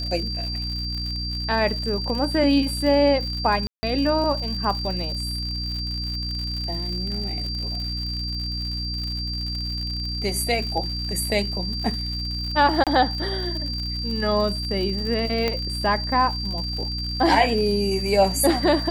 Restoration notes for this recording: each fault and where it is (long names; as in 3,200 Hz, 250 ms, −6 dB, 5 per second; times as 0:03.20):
surface crackle 96 per second −30 dBFS
mains hum 60 Hz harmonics 5 −30 dBFS
whistle 4,700 Hz −29 dBFS
0:03.67–0:03.83: drop-out 160 ms
0:12.84–0:12.87: drop-out 27 ms
0:15.48: click −10 dBFS